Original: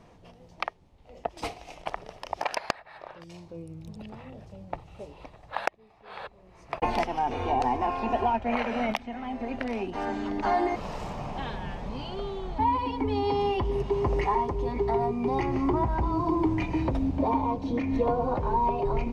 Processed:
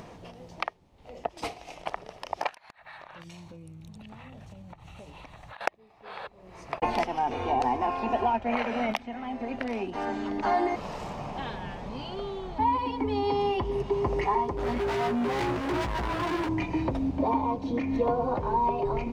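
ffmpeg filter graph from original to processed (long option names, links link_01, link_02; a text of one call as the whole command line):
ffmpeg -i in.wav -filter_complex "[0:a]asettb=1/sr,asplit=3[link_01][link_02][link_03];[link_01]atrim=end=2.494[link_04];[link_02]atrim=start=2.49:end=5.61,asetpts=PTS-STARTPTS,afade=type=in:duration=0.004:curve=qsin,afade=type=out:start_time=3.116:duration=0.004:curve=qsin,equalizer=frequency=430:width_type=o:width=1.4:gain=-11.5,bandreject=frequency=5000:width=6.1,acompressor=threshold=-47dB:ratio=12:attack=3.2:release=140:knee=1:detection=peak[link_05];[link_03]atrim=start=5.606[link_06];[link_04][link_05]acrossfade=duration=0.004:curve1=hsin:curve2=qsin[link_07];[link_07][link_06]acrossfade=duration=0.004:curve1=qsin:curve2=hsin,asettb=1/sr,asplit=3[link_08][link_09][link_10];[link_08]atrim=end=14.574[link_11];[link_09]atrim=start=14.57:end=16.49,asetpts=PTS-STARTPTS,afade=type=in:duration=0.004:curve=qsin,afade=type=out:start_time=1.916:duration=0.004:curve=qsin,acontrast=46,asoftclip=type=hard:threshold=-28dB,asplit=2[link_12][link_13];[link_13]adelay=17,volume=-5.5dB[link_14];[link_12][link_14]amix=inputs=2:normalize=0,atrim=end_sample=84672[link_15];[link_10]atrim=start=16.486[link_16];[link_11][link_15]acrossfade=duration=0.004:curve1=hsin:curve2=qsin[link_17];[link_17][link_16]acrossfade=duration=0.004:curve1=qsin:curve2=hsin,lowshelf=frequency=74:gain=-8.5,acompressor=mode=upward:threshold=-37dB:ratio=2.5" out.wav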